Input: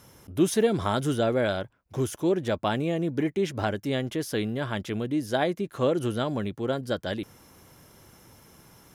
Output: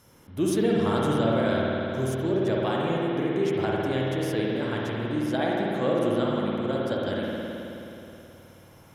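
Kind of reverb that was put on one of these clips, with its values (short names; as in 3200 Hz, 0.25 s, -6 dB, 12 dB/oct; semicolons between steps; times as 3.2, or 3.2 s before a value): spring tank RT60 3.2 s, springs 53 ms, chirp 35 ms, DRR -4.5 dB; gain -4.5 dB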